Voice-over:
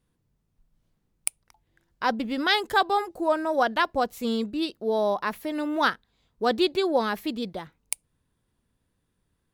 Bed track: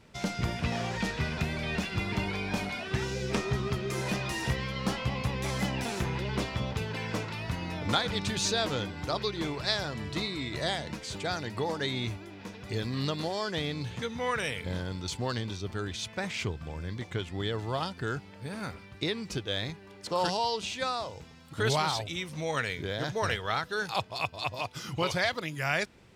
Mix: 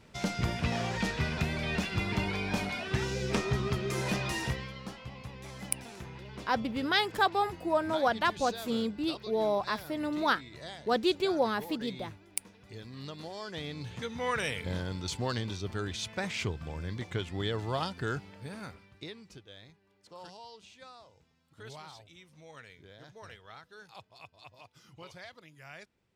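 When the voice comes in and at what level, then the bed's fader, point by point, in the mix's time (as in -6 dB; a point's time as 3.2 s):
4.45 s, -4.5 dB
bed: 4.37 s 0 dB
4.92 s -13 dB
12.89 s -13 dB
14.36 s -0.5 dB
18.25 s -0.5 dB
19.56 s -19.5 dB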